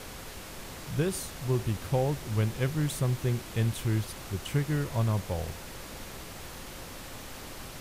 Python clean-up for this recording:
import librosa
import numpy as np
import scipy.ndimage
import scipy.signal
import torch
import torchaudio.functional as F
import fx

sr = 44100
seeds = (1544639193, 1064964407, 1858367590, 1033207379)

y = fx.notch(x, sr, hz=530.0, q=30.0)
y = fx.noise_reduce(y, sr, print_start_s=0.02, print_end_s=0.52, reduce_db=30.0)